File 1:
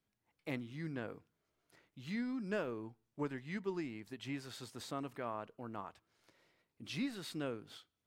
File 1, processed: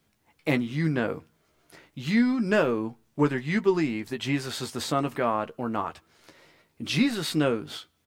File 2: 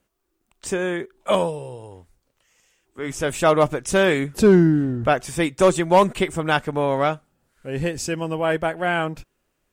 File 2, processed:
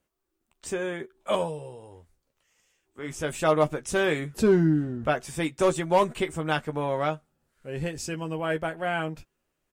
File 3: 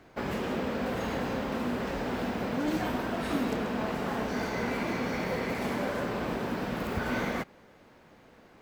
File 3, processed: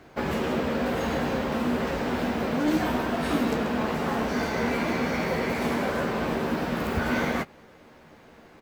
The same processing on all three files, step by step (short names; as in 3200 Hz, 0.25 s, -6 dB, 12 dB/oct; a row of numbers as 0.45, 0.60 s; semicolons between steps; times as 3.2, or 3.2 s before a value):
doubler 13 ms -8 dB; match loudness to -27 LUFS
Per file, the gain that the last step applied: +15.5, -7.0, +4.0 dB